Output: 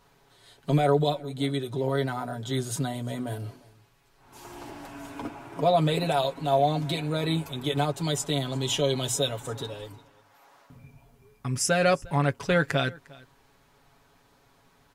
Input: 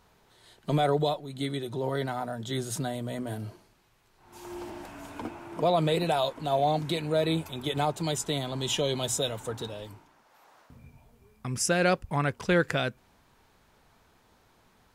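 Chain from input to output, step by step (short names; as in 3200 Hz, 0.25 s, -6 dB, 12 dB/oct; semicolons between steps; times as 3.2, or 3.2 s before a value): comb 7.2 ms; on a send: echo 0.354 s -23.5 dB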